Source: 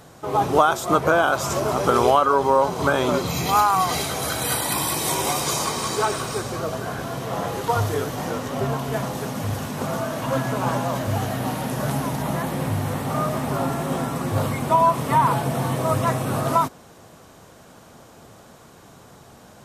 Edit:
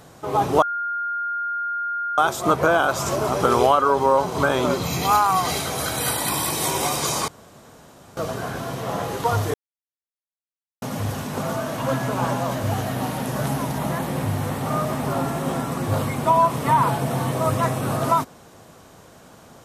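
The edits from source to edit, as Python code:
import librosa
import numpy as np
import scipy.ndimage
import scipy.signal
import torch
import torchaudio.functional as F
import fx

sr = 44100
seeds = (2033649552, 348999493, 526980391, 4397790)

y = fx.edit(x, sr, fx.insert_tone(at_s=0.62, length_s=1.56, hz=1410.0, db=-23.0),
    fx.room_tone_fill(start_s=5.72, length_s=0.89),
    fx.silence(start_s=7.98, length_s=1.28), tone=tone)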